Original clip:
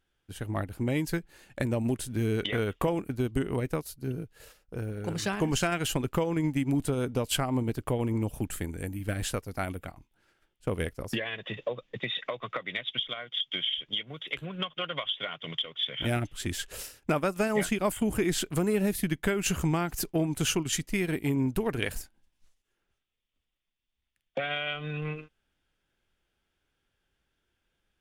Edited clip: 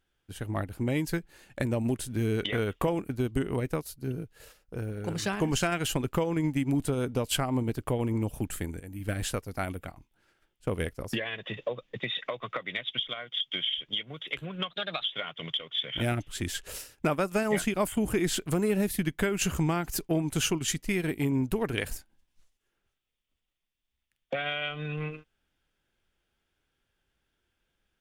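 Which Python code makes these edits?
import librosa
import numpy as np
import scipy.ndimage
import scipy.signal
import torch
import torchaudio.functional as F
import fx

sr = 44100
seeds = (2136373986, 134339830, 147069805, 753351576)

y = fx.edit(x, sr, fx.fade_in_from(start_s=8.8, length_s=0.25, floor_db=-16.5),
    fx.speed_span(start_s=14.71, length_s=0.37, speed=1.14), tone=tone)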